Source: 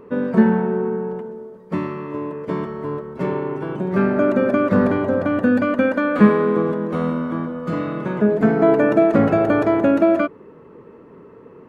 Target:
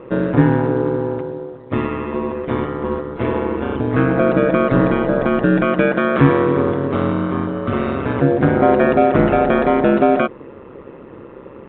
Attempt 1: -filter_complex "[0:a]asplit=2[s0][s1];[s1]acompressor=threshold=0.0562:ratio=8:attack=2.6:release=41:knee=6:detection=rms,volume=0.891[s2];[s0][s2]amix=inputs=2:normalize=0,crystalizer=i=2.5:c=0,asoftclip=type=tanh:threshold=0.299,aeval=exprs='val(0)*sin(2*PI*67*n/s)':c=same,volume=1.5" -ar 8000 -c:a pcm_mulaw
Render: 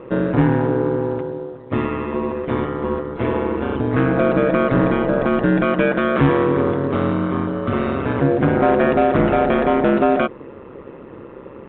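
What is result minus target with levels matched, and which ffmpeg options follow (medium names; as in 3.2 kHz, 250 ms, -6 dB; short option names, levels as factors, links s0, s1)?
saturation: distortion +9 dB
-filter_complex "[0:a]asplit=2[s0][s1];[s1]acompressor=threshold=0.0562:ratio=8:attack=2.6:release=41:knee=6:detection=rms,volume=0.891[s2];[s0][s2]amix=inputs=2:normalize=0,crystalizer=i=2.5:c=0,asoftclip=type=tanh:threshold=0.668,aeval=exprs='val(0)*sin(2*PI*67*n/s)':c=same,volume=1.5" -ar 8000 -c:a pcm_mulaw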